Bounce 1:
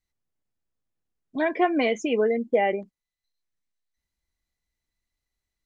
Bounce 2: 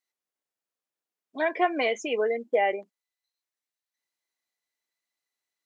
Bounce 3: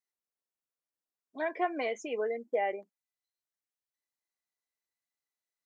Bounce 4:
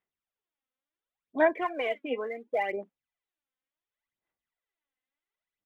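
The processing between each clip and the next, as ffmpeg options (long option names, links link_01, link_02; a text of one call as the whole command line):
ffmpeg -i in.wav -af "highpass=460" out.wav
ffmpeg -i in.wav -af "equalizer=frequency=3100:width_type=o:width=0.92:gain=-5.5,volume=-6.5dB" out.wav
ffmpeg -i in.wav -af "aresample=8000,aresample=44100,aphaser=in_gain=1:out_gain=1:delay=3.9:decay=0.71:speed=0.7:type=sinusoidal,volume=1dB" out.wav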